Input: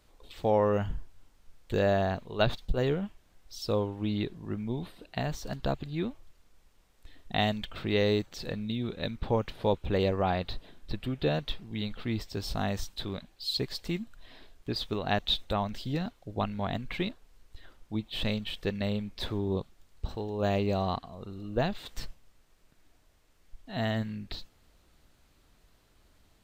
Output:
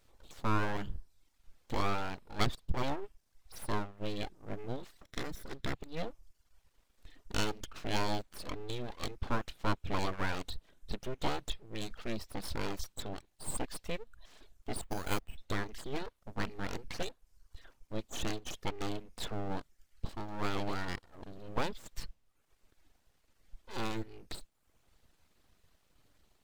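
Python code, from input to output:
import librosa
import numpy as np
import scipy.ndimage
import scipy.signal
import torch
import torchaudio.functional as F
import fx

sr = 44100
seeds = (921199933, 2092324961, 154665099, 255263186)

y = fx.lower_of_two(x, sr, delay_ms=0.55, at=(5.0, 5.73))
y = fx.resample_bad(y, sr, factor=8, down='filtered', up='hold', at=(14.81, 15.38))
y = fx.dereverb_blind(y, sr, rt60_s=0.76)
y = np.abs(y)
y = F.gain(torch.from_numpy(y), -2.0).numpy()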